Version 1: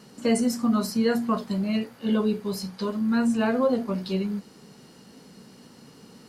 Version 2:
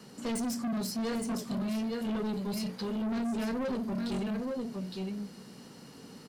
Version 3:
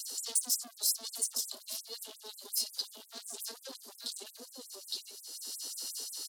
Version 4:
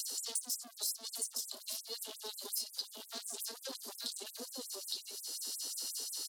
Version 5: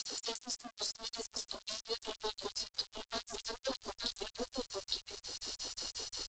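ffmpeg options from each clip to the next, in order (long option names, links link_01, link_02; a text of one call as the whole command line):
ffmpeg -i in.wav -filter_complex "[0:a]acrossover=split=150|540|1800[link_01][link_02][link_03][link_04];[link_03]acompressor=threshold=-43dB:ratio=6[link_05];[link_01][link_02][link_05][link_04]amix=inputs=4:normalize=0,aecho=1:1:863:0.501,asoftclip=type=tanh:threshold=-29dB,volume=-1dB" out.wav
ffmpeg -i in.wav -af "alimiter=level_in=17dB:limit=-24dB:level=0:latency=1:release=462,volume=-17dB,aexciter=amount=5.7:drive=8.9:freq=3400,afftfilt=real='re*gte(b*sr/1024,230*pow(7900/230,0.5+0.5*sin(2*PI*5.6*pts/sr)))':imag='im*gte(b*sr/1024,230*pow(7900/230,0.5+0.5*sin(2*PI*5.6*pts/sr)))':win_size=1024:overlap=0.75" out.wav
ffmpeg -i in.wav -af "acompressor=threshold=-46dB:ratio=2.5,volume=5.5dB" out.wav
ffmpeg -i in.wav -af "lowpass=frequency=1900:poles=1,aresample=16000,aeval=exprs='sgn(val(0))*max(abs(val(0))-0.00106,0)':channel_layout=same,aresample=44100,asubboost=boost=8.5:cutoff=77,volume=12.5dB" out.wav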